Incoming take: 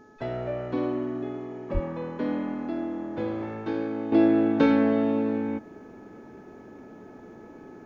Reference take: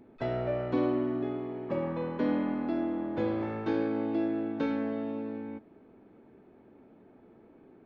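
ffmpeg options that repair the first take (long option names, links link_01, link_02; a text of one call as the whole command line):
ffmpeg -i in.wav -filter_complex "[0:a]bandreject=frequency=427.7:width_type=h:width=4,bandreject=frequency=855.4:width_type=h:width=4,bandreject=frequency=1283.1:width_type=h:width=4,bandreject=frequency=1710.8:width_type=h:width=4,asplit=3[link_01][link_02][link_03];[link_01]afade=type=out:start_time=1.73:duration=0.02[link_04];[link_02]highpass=frequency=140:width=0.5412,highpass=frequency=140:width=1.3066,afade=type=in:start_time=1.73:duration=0.02,afade=type=out:start_time=1.85:duration=0.02[link_05];[link_03]afade=type=in:start_time=1.85:duration=0.02[link_06];[link_04][link_05][link_06]amix=inputs=3:normalize=0,agate=range=-21dB:threshold=-38dB,asetnsamples=nb_out_samples=441:pad=0,asendcmd='4.12 volume volume -10.5dB',volume=0dB" out.wav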